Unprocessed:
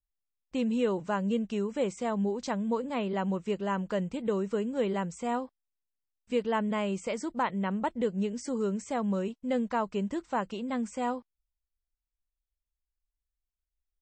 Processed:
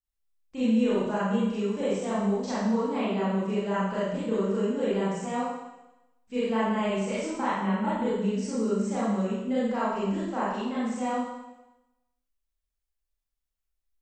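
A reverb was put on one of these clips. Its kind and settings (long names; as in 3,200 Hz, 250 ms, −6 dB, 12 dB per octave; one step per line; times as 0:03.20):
four-comb reverb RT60 0.97 s, combs from 28 ms, DRR −10 dB
level −7.5 dB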